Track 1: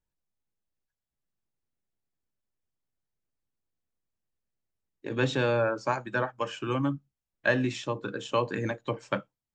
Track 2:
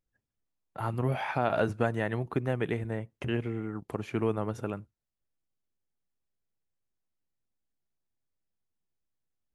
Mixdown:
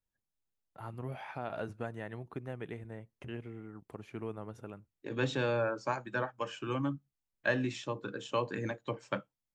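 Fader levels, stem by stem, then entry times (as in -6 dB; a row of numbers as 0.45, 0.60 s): -5.5, -11.5 dB; 0.00, 0.00 s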